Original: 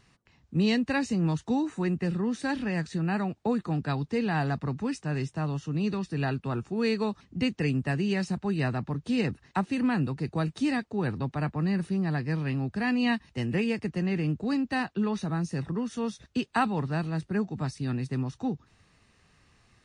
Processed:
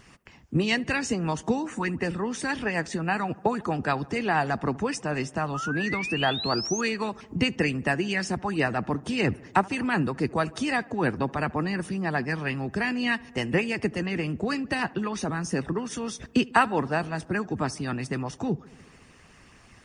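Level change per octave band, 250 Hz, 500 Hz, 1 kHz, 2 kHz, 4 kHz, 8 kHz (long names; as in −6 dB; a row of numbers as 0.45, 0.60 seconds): −0.5, +3.5, +6.5, +7.0, +6.5, +11.0 decibels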